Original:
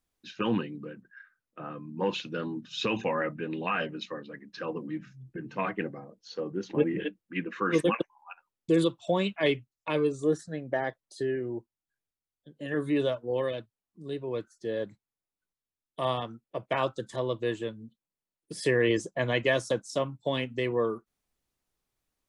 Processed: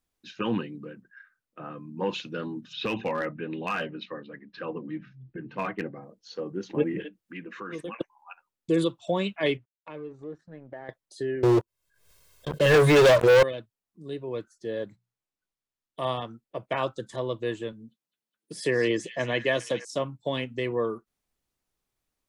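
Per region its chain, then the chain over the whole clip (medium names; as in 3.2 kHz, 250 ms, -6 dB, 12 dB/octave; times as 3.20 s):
2.73–6.03 s: low-pass 4.1 kHz 24 dB/octave + overload inside the chain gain 22 dB
7.01–8.01 s: compression 2.5:1, threshold -38 dBFS + tape noise reduction on one side only encoder only
9.57–10.89 s: companding laws mixed up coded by A + low-pass 2.2 kHz + compression 2:1, threshold -45 dBFS
11.43–13.43 s: comb 1.9 ms, depth 89% + waveshaping leveller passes 5 + swell ahead of each attack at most 73 dB/s
14.82–16.00 s: median filter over 3 samples + hum notches 60/120/180 Hz
17.72–19.85 s: high-pass 120 Hz + repeats whose band climbs or falls 206 ms, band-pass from 4.7 kHz, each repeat -0.7 oct, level -6.5 dB
whole clip: none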